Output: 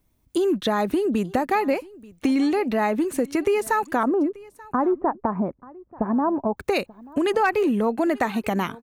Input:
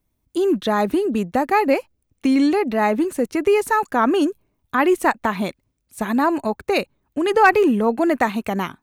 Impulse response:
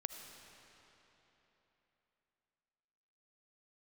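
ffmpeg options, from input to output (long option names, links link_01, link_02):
-filter_complex "[0:a]asettb=1/sr,asplit=3[link_01][link_02][link_03];[link_01]atrim=end=4.034[link_04];[link_02]atrim=start=4.03:end=6.57,asetpts=PTS-STARTPTS,afade=type=in:duration=0.004:curve=qsin,afade=type=out:start_time=2.536:duration=0.004:curve=qsin,lowpass=frequency=1100:width=0.5412,lowpass=frequency=1100:width=1.3066[link_05];[link_03]atrim=start=6.566[link_06];[link_04][link_05]acrossfade=duration=0.004:curve1=hsin:curve2=qsin[link_07];[link_07][link_06]acrossfade=duration=0.004:curve1=qsin:curve2=hsin,acompressor=threshold=-26dB:ratio=3,aecho=1:1:884:0.0794,volume=4.5dB"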